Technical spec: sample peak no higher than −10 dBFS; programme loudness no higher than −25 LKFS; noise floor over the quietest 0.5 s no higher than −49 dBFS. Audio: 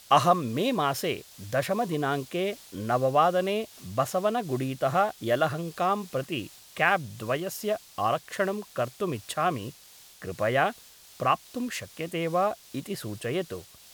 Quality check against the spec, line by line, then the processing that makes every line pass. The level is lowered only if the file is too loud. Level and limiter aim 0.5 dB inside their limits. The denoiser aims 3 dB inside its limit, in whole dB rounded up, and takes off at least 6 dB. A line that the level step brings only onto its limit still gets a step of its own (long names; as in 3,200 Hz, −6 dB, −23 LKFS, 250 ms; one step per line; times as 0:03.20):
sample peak −7.0 dBFS: out of spec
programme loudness −28.0 LKFS: in spec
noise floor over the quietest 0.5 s −52 dBFS: in spec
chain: brickwall limiter −10.5 dBFS